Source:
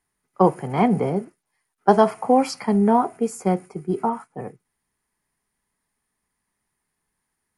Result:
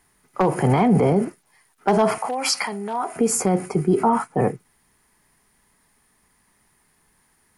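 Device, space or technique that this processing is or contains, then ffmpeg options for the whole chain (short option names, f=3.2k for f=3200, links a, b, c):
loud club master: -filter_complex "[0:a]acompressor=threshold=-20dB:ratio=2,asoftclip=type=hard:threshold=-12.5dB,alimiter=level_in=24dB:limit=-1dB:release=50:level=0:latency=1,asettb=1/sr,asplit=3[a][b][c];[a]atrim=end=2.184[d];[b]atrim=start=2.18:end=3.16,asetpts=PTS-STARTPTS,afade=t=in:d=0.004:c=qsin,afade=t=out:st=0.976:d=0.004:c=qsin,highpass=f=1.4k:p=1[e];[c]atrim=start=3.156[f];[d][e]acrossfade=d=0.004:c1=hsin:c2=qsin[g];[g][f]acrossfade=d=0.004:c1=qsin:c2=hsin,volume=-9dB"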